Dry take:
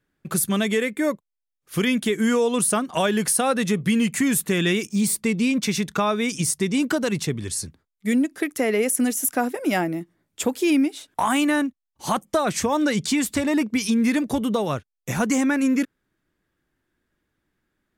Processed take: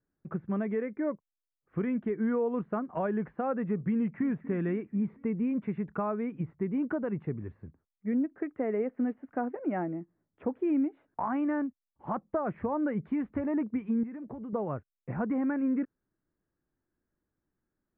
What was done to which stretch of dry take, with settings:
3.96–4.43 s: echo throw 240 ms, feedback 60%, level -17 dB
14.03–14.53 s: compression 16:1, threshold -28 dBFS
whole clip: Bessel low-pass 1.1 kHz, order 8; trim -8 dB

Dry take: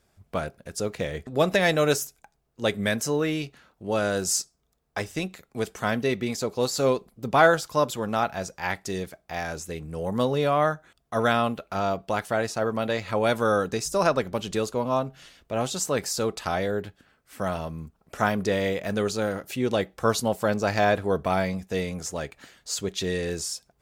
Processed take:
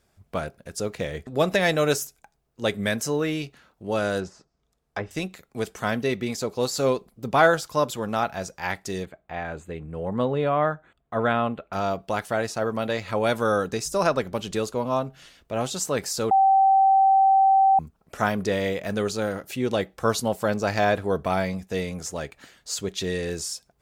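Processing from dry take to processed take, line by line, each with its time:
4.19–5.11 s: low-pass that closes with the level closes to 1.2 kHz, closed at -25 dBFS
9.05–11.73 s: boxcar filter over 8 samples
16.31–17.79 s: bleep 775 Hz -14 dBFS

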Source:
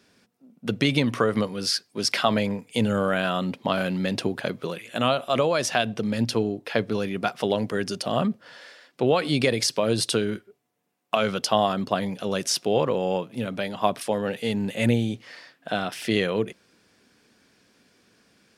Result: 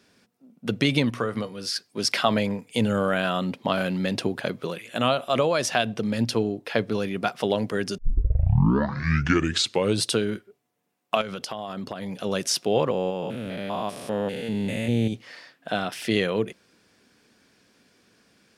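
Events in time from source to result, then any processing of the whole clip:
1.10–1.76 s: feedback comb 120 Hz, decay 0.18 s
7.98 s: tape start 2.08 s
11.21–12.18 s: compression 12:1, threshold -28 dBFS
12.91–15.13 s: spectrogram pixelated in time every 200 ms

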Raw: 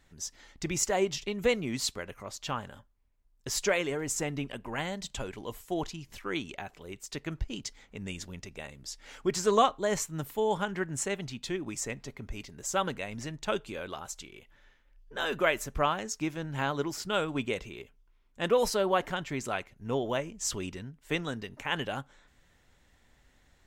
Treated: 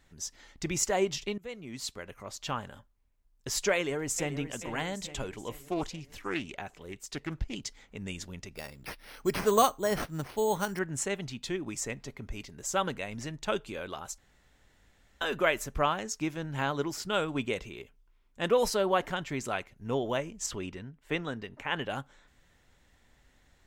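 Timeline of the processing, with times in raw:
1.38–2.39 s: fade in, from -23 dB
3.75–4.39 s: echo throw 430 ms, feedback 55%, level -11 dB
5.56–7.55 s: loudspeaker Doppler distortion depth 0.73 ms
8.55–10.79 s: careless resampling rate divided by 6×, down none, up hold
14.18–15.21 s: room tone
20.46–21.90 s: tone controls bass -2 dB, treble -9 dB

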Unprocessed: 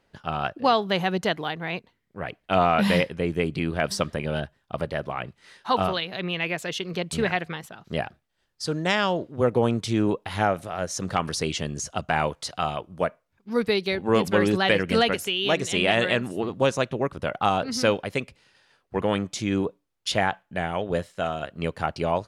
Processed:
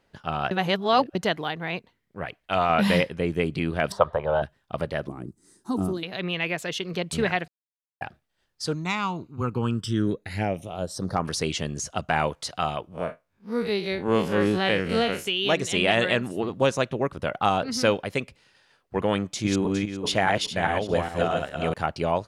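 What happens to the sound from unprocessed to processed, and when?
0.51–1.15 s: reverse
2.25–2.70 s: peaking EQ 240 Hz -7 dB 2.8 oct
3.92–4.42 s: FFT filter 100 Hz 0 dB, 270 Hz -14 dB, 500 Hz +6 dB, 970 Hz +13 dB, 2.5 kHz -12 dB, 3.6 kHz -5 dB, 5.2 kHz -19 dB
5.08–6.03 s: FFT filter 140 Hz 0 dB, 330 Hz +10 dB, 530 Hz -13 dB, 1.2 kHz -14 dB, 2.9 kHz -26 dB, 8.1 kHz +8 dB, 12 kHz +3 dB
7.48–8.01 s: mute
8.73–11.24 s: phase shifter stages 12, 0.086 Hz -> 0.27 Hz, lowest notch 540–3700 Hz
12.88–15.26 s: spectral blur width 85 ms
19.24–21.74 s: backward echo that repeats 205 ms, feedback 41%, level -1.5 dB

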